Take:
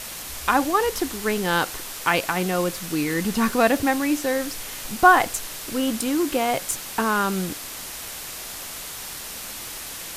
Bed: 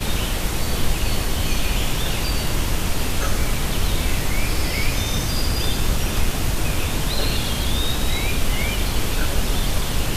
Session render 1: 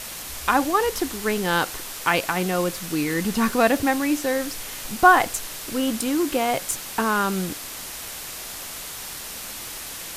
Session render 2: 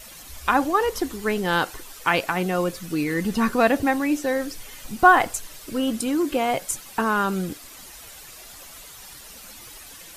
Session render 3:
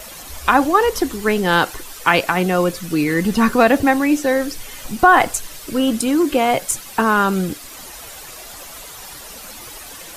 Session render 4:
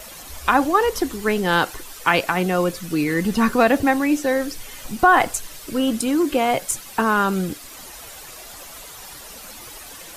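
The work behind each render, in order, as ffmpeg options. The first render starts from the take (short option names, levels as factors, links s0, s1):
-af anull
-af "afftdn=nr=11:nf=-35"
-filter_complex "[0:a]acrossover=split=340|1200|3700[s0][s1][s2][s3];[s1]acompressor=mode=upward:threshold=0.00631:ratio=2.5[s4];[s0][s4][s2][s3]amix=inputs=4:normalize=0,alimiter=level_in=2.11:limit=0.891:release=50:level=0:latency=1"
-af "volume=0.708"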